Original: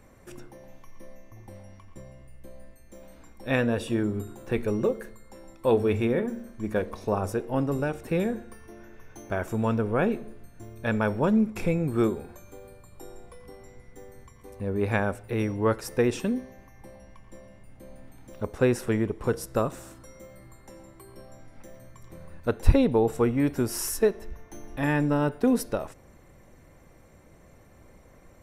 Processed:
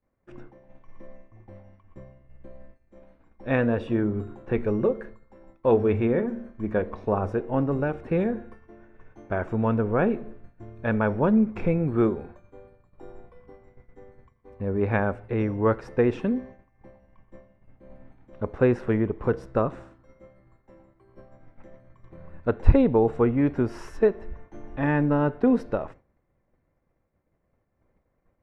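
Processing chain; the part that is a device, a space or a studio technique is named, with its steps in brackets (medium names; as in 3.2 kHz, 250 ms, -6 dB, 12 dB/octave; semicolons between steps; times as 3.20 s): hearing-loss simulation (low-pass 2 kHz 12 dB/octave; expander -40 dBFS); trim +2 dB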